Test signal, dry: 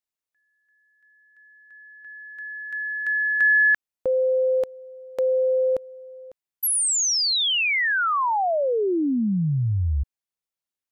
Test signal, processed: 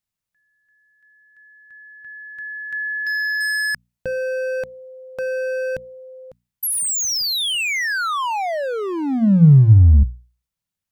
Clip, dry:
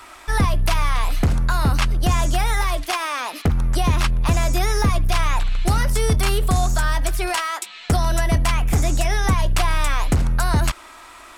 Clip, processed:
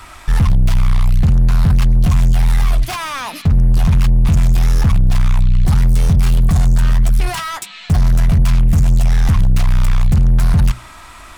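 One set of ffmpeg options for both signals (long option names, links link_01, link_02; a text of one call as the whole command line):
ffmpeg -i in.wav -af "asoftclip=type=hard:threshold=-24.5dB,lowshelf=frequency=230:width_type=q:width=1.5:gain=11.5,bandreject=frequency=60:width_type=h:width=6,bandreject=frequency=120:width_type=h:width=6,bandreject=frequency=180:width_type=h:width=6,bandreject=frequency=240:width_type=h:width=6,volume=4dB" out.wav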